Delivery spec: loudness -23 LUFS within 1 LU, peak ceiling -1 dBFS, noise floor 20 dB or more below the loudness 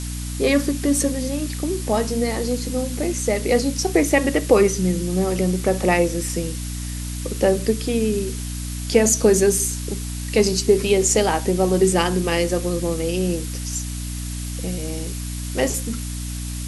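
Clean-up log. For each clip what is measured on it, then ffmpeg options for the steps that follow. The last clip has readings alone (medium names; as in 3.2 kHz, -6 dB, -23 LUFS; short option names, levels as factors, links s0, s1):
hum 60 Hz; highest harmonic 300 Hz; hum level -26 dBFS; noise floor -29 dBFS; noise floor target -41 dBFS; loudness -21.0 LUFS; peak level -3.0 dBFS; loudness target -23.0 LUFS
-> -af "bandreject=f=60:t=h:w=4,bandreject=f=120:t=h:w=4,bandreject=f=180:t=h:w=4,bandreject=f=240:t=h:w=4,bandreject=f=300:t=h:w=4"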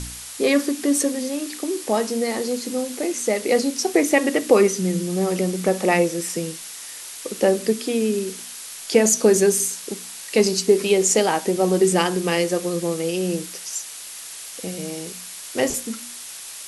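hum not found; noise floor -37 dBFS; noise floor target -41 dBFS
-> -af "afftdn=nr=6:nf=-37"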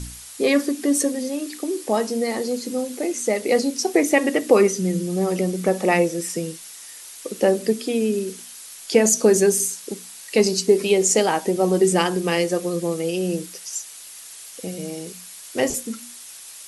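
noise floor -40 dBFS; noise floor target -41 dBFS
-> -af "afftdn=nr=6:nf=-40"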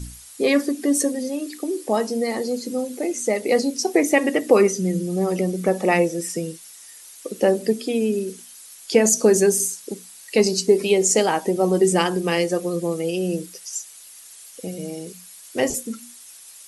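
noise floor -44 dBFS; loudness -21.0 LUFS; peak level -2.5 dBFS; loudness target -23.0 LUFS
-> -af "volume=0.794"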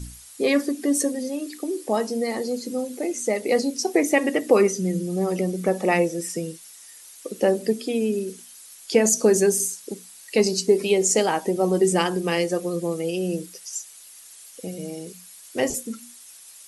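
loudness -23.0 LUFS; peak level -4.5 dBFS; noise floor -46 dBFS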